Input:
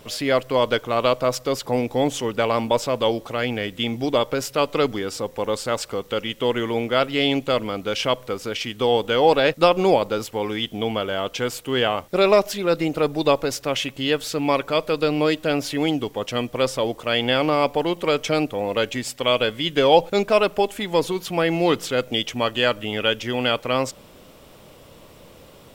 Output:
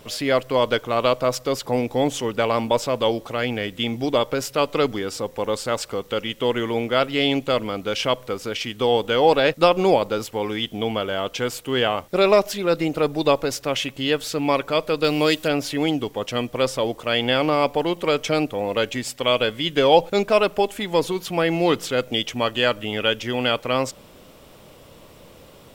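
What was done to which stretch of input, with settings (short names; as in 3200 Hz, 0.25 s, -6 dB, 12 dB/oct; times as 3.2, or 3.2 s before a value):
15.04–15.48 high shelf 3000 Hz +10 dB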